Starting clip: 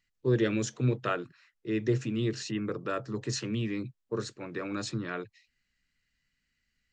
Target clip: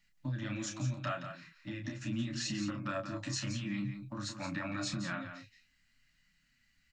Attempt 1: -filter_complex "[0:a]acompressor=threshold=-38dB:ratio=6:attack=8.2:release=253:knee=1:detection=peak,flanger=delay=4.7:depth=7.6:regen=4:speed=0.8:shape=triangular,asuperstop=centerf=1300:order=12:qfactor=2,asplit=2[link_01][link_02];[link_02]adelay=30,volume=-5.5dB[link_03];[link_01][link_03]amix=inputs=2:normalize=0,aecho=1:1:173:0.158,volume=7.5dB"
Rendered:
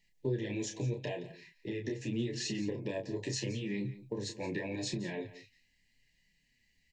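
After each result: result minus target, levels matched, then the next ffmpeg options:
1,000 Hz band −8.5 dB; echo-to-direct −7 dB
-filter_complex "[0:a]acompressor=threshold=-38dB:ratio=6:attack=8.2:release=253:knee=1:detection=peak,flanger=delay=4.7:depth=7.6:regen=4:speed=0.8:shape=triangular,asuperstop=centerf=420:order=12:qfactor=2,asplit=2[link_01][link_02];[link_02]adelay=30,volume=-5.5dB[link_03];[link_01][link_03]amix=inputs=2:normalize=0,aecho=1:1:173:0.158,volume=7.5dB"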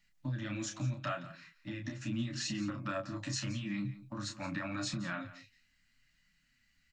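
echo-to-direct −7 dB
-filter_complex "[0:a]acompressor=threshold=-38dB:ratio=6:attack=8.2:release=253:knee=1:detection=peak,flanger=delay=4.7:depth=7.6:regen=4:speed=0.8:shape=triangular,asuperstop=centerf=420:order=12:qfactor=2,asplit=2[link_01][link_02];[link_02]adelay=30,volume=-5.5dB[link_03];[link_01][link_03]amix=inputs=2:normalize=0,aecho=1:1:173:0.355,volume=7.5dB"

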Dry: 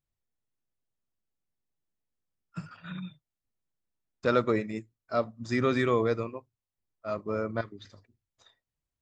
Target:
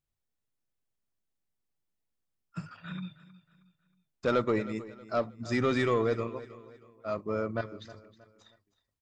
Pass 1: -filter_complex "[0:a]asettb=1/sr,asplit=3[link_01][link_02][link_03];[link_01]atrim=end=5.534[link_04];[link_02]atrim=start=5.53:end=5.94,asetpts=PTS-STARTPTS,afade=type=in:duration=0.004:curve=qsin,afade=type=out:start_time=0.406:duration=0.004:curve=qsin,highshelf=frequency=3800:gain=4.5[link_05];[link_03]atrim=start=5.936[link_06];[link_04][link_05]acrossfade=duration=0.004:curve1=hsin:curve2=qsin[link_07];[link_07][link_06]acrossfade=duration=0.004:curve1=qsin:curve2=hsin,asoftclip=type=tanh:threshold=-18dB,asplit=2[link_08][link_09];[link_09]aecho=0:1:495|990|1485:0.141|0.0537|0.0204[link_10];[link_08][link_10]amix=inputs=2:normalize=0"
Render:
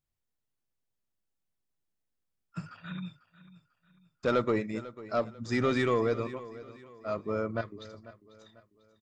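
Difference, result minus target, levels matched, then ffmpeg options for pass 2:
echo 179 ms late
-filter_complex "[0:a]asettb=1/sr,asplit=3[link_01][link_02][link_03];[link_01]atrim=end=5.534[link_04];[link_02]atrim=start=5.53:end=5.94,asetpts=PTS-STARTPTS,afade=type=in:duration=0.004:curve=qsin,afade=type=out:start_time=0.406:duration=0.004:curve=qsin,highshelf=frequency=3800:gain=4.5[link_05];[link_03]atrim=start=5.936[link_06];[link_04][link_05]acrossfade=duration=0.004:curve1=hsin:curve2=qsin[link_07];[link_07][link_06]acrossfade=duration=0.004:curve1=qsin:curve2=hsin,asoftclip=type=tanh:threshold=-18dB,asplit=2[link_08][link_09];[link_09]aecho=0:1:316|632|948:0.141|0.0537|0.0204[link_10];[link_08][link_10]amix=inputs=2:normalize=0"

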